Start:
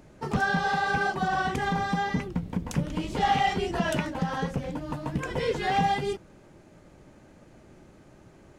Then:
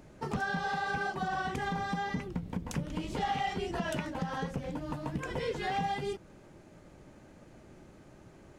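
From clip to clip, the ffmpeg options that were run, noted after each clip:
-af "acompressor=threshold=-33dB:ratio=2,volume=-1.5dB"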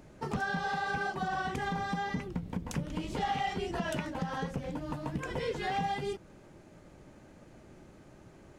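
-af anull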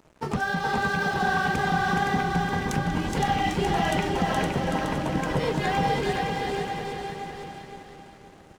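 -filter_complex "[0:a]asplit=2[a][b];[b]aecho=0:1:420|798|1138|1444|1720:0.631|0.398|0.251|0.158|0.1[c];[a][c]amix=inputs=2:normalize=0,aeval=exprs='sgn(val(0))*max(abs(val(0))-0.00266,0)':c=same,asplit=2[d][e];[e]aecho=0:1:515|1030|1545|2060:0.562|0.186|0.0612|0.0202[f];[d][f]amix=inputs=2:normalize=0,volume=7dB"

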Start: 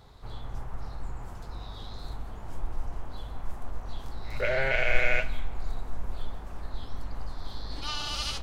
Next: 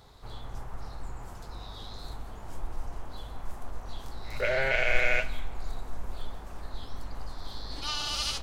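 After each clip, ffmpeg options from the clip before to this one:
-af "bass=f=250:g=-3,treble=f=4k:g=4"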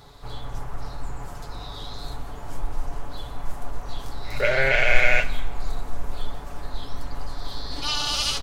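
-af "aecho=1:1:7:0.45,volume=6dB"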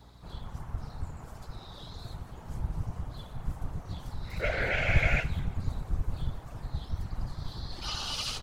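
-af "afftfilt=real='hypot(re,im)*cos(2*PI*random(0))':imag='hypot(re,im)*sin(2*PI*random(1))':win_size=512:overlap=0.75,aeval=exprs='val(0)+0.00251*(sin(2*PI*60*n/s)+sin(2*PI*2*60*n/s)/2+sin(2*PI*3*60*n/s)/3+sin(2*PI*4*60*n/s)/4+sin(2*PI*5*60*n/s)/5)':c=same,volume=-3.5dB"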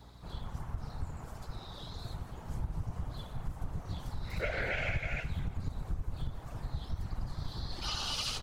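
-af "acompressor=threshold=-30dB:ratio=8"

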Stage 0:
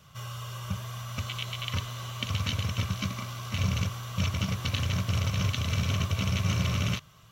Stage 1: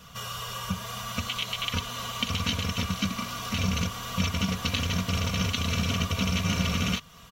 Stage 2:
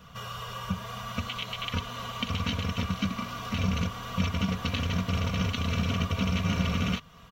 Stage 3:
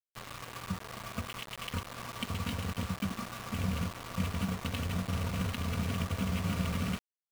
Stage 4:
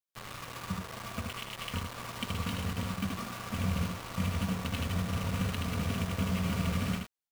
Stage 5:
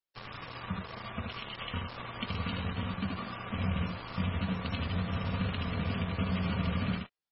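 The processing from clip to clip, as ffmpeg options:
-filter_complex "[0:a]aecho=1:1:4.2:0.74,asplit=2[a][b];[b]acompressor=threshold=-38dB:ratio=6,volume=1dB[c];[a][c]amix=inputs=2:normalize=0"
-af "equalizer=f=10k:w=0.37:g=-12"
-af "adynamicsmooth=sensitivity=3:basefreq=1.3k,acrusher=bits=5:mix=0:aa=0.000001,volume=-5dB"
-af "aecho=1:1:77:0.596"
-ar 22050 -c:a libmp3lame -b:a 16k

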